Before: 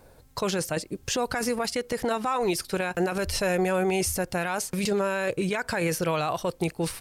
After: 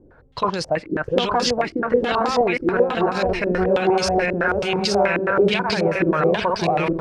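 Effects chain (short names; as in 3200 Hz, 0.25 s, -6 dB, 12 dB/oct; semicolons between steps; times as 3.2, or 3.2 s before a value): regenerating reverse delay 0.433 s, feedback 53%, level -1.5 dB; stepped low-pass 9.3 Hz 330–4700 Hz; gain +1.5 dB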